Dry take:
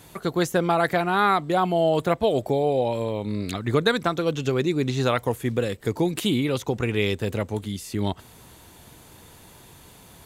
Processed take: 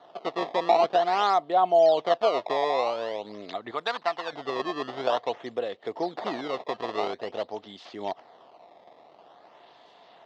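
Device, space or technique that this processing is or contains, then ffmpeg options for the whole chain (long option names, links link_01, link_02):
circuit-bent sampling toy: -filter_complex "[0:a]acrusher=samples=17:mix=1:aa=0.000001:lfo=1:lforange=27.2:lforate=0.48,highpass=500,equalizer=frequency=690:width_type=q:width=4:gain=9,equalizer=frequency=1500:width_type=q:width=4:gain=-8,equalizer=frequency=2400:width_type=q:width=4:gain=-9,lowpass=frequency=4000:width=0.5412,lowpass=frequency=4000:width=1.3066,asettb=1/sr,asplit=3[link_01][link_02][link_03];[link_01]atrim=end=3.714[link_04];[link_02]atrim=start=3.71:end=4.33,asetpts=PTS-STARTPTS,afade=type=in:duration=0.004:curve=qsin,afade=type=out:start_time=0.616:duration=0.004:curve=qsin,lowshelf=frequency=690:width_type=q:width=1.5:gain=-7.5[link_05];[link_03]atrim=start=4.326[link_06];[link_04][link_05]acrossfade=duration=0.004:curve1=hsin:curve2=qsin[link_07];[link_07][link_06]acrossfade=duration=0.004:curve1=qsin:curve2=hsin,volume=-2dB"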